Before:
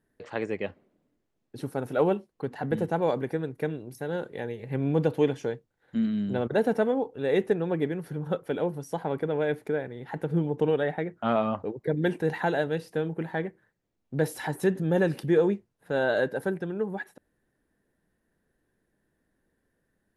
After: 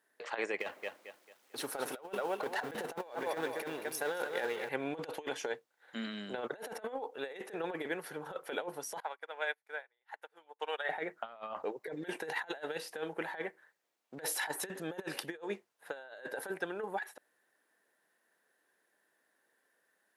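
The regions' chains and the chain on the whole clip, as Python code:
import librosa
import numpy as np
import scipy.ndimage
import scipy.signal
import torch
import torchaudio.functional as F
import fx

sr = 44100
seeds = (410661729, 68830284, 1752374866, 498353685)

y = fx.chain(x, sr, fx.law_mismatch(coded='mu'),
    fx.echo_feedback(ms=222, feedback_pct=33, wet_db=-9.5), at=(0.6, 4.69))
y = fx.chain(y, sr, fx.highpass(hz=820.0, slope=12),
    fx.upward_expand(threshold_db=-53.0, expansion=2.5), at=(9.0, 10.89))
y = scipy.signal.sosfilt(scipy.signal.butter(2, 730.0, 'highpass', fs=sr, output='sos'), y)
y = fx.over_compress(y, sr, threshold_db=-38.0, ratio=-0.5)
y = F.gain(torch.from_numpy(y), 1.0).numpy()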